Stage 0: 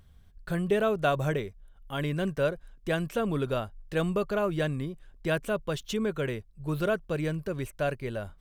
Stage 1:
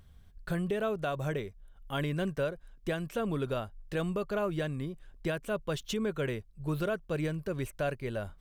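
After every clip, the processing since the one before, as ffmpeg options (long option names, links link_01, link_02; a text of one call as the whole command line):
ffmpeg -i in.wav -af "alimiter=limit=-22dB:level=0:latency=1:release=479" out.wav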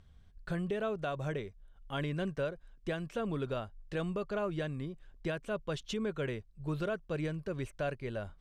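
ffmpeg -i in.wav -af "lowpass=7100,volume=-3dB" out.wav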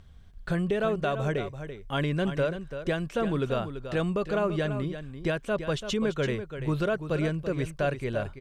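ffmpeg -i in.wav -af "aecho=1:1:337:0.316,volume=7.5dB" out.wav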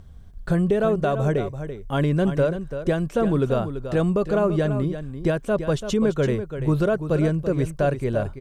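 ffmpeg -i in.wav -af "equalizer=frequency=2700:width=0.58:gain=-9.5,volume=7.5dB" out.wav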